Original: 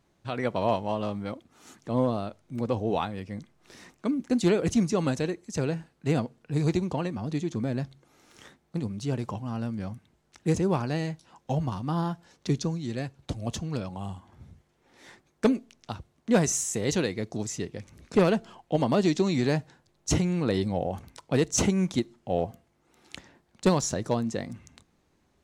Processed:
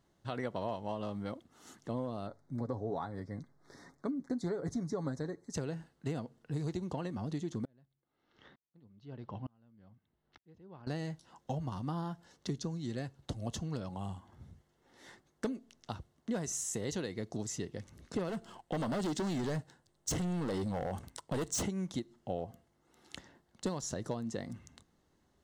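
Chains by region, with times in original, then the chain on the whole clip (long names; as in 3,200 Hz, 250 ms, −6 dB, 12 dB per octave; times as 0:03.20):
0:02.27–0:05.54: Butterworth band-reject 2,800 Hz, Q 1.5 + high-shelf EQ 5,600 Hz −11 dB + comb filter 7.2 ms, depth 40%
0:07.65–0:10.87: low-pass filter 4,000 Hz 24 dB per octave + tremolo with a ramp in dB swelling 1.1 Hz, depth 37 dB
0:18.29–0:21.63: parametric band 8,500 Hz +8 dB 0.29 octaves + leveller curve on the samples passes 1 + gain into a clipping stage and back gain 22.5 dB
whole clip: notch filter 2,400 Hz, Q 5.8; downward compressor, threshold −29 dBFS; level −4 dB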